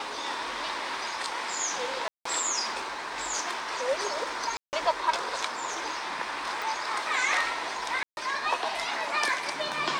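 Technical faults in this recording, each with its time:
2.08–2.25 s: dropout 174 ms
4.57–4.73 s: dropout 159 ms
6.62 s: pop
8.03–8.17 s: dropout 141 ms

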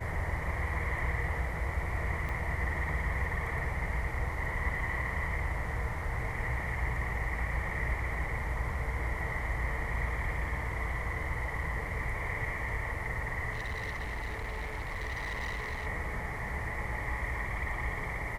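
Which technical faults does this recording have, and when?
2.29 s: dropout 2.2 ms
13.52–15.87 s: clipped -32.5 dBFS

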